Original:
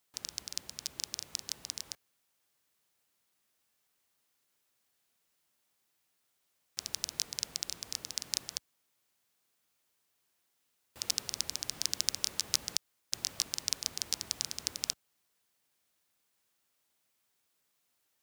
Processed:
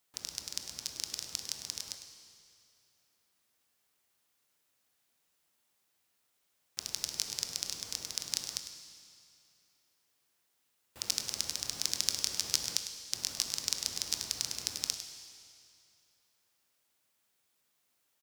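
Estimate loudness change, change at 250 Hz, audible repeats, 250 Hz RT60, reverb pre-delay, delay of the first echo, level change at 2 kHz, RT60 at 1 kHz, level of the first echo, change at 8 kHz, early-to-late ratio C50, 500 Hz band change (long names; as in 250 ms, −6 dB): +1.0 dB, +1.0 dB, 1, 2.4 s, 20 ms, 102 ms, +1.0 dB, 2.5 s, −11.5 dB, +1.0 dB, 6.0 dB, +1.0 dB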